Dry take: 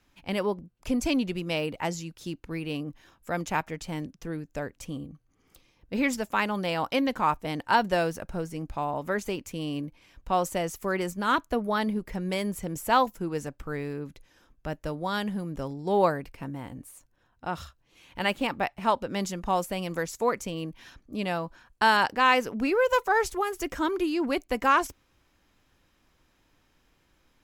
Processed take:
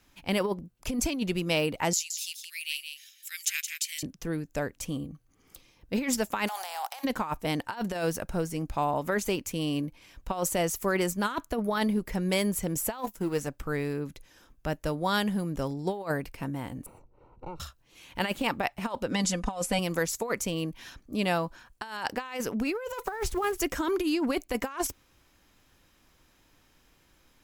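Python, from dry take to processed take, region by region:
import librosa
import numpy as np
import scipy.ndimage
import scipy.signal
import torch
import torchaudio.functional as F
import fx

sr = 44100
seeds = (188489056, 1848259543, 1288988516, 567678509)

y = fx.chain(x, sr, fx.steep_highpass(hz=2100.0, slope=36),
    fx.high_shelf(hz=3800.0, db=8.5),
    fx.echo_single(ms=170, db=-7.5), at=(1.93, 4.03))
y = fx.spec_flatten(y, sr, power=0.5, at=(6.47, 7.03), fade=0.02)
y = fx.over_compress(y, sr, threshold_db=-33.0, ratio=-1.0, at=(6.47, 7.03), fade=0.02)
y = fx.ladder_highpass(y, sr, hz=740.0, resonance_pct=80, at=(6.47, 7.03), fade=0.02)
y = fx.chain(y, sr, fx.law_mismatch(coded='A'),
    fx.doubler(ms=15.0, db=-14.0), at=(12.98, 13.47))
y = fx.chain(y, sr, fx.lower_of_two(delay_ms=2.2),
    fx.moving_average(points=26),
    fx.band_squash(depth_pct=70), at=(16.86, 17.6))
y = fx.chain(y, sr, fx.lowpass(hz=10000.0, slope=24),
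    fx.comb(ms=4.0, depth=0.76), at=(19.11, 19.79))
y = fx.chain(y, sr, fx.block_float(bits=5),
    fx.bass_treble(bass_db=8, treble_db=-8), at=(23.05, 23.58))
y = fx.high_shelf(y, sr, hz=5600.0, db=7.0)
y = fx.over_compress(y, sr, threshold_db=-27.0, ratio=-0.5)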